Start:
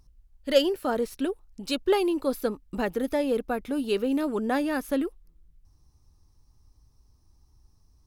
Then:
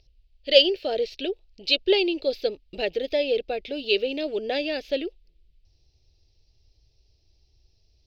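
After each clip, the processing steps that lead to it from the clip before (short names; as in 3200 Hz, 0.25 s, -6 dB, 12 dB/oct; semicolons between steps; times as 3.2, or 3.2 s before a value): EQ curve 110 Hz 0 dB, 240 Hz -10 dB, 370 Hz +5 dB, 640 Hz +7 dB, 1100 Hz -18 dB, 2600 Hz +15 dB, 4700 Hz +14 dB, 9800 Hz -27 dB, 14000 Hz -13 dB; gain -3 dB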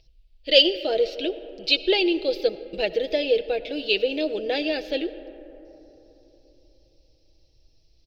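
comb 6.2 ms, depth 49%; reverb RT60 3.6 s, pre-delay 40 ms, DRR 14 dB; gain +1 dB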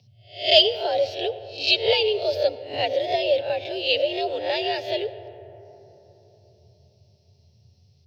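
spectral swells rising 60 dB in 0.40 s; frequency shift +83 Hz; gain -1 dB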